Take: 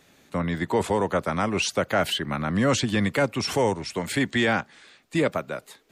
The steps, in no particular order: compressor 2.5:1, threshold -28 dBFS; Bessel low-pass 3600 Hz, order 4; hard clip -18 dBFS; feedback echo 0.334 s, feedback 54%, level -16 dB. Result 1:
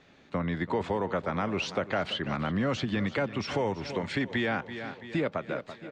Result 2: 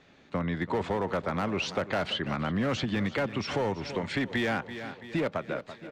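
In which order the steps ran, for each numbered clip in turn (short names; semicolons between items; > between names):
feedback echo > compressor > hard clip > Bessel low-pass; Bessel low-pass > hard clip > feedback echo > compressor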